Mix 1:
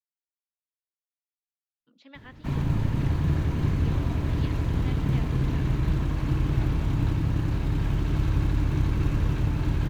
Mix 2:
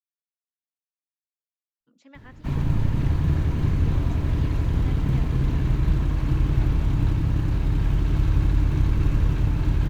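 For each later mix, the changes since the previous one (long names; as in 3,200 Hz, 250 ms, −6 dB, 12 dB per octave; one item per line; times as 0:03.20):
speech: remove low-pass with resonance 3,800 Hz, resonance Q 2.7
master: add low-shelf EQ 66 Hz +8 dB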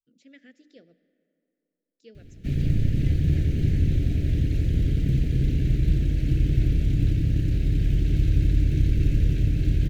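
speech: entry −1.80 s
master: add Butterworth band-reject 1,000 Hz, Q 0.69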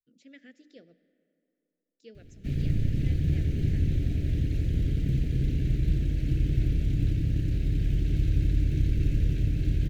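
background −4.0 dB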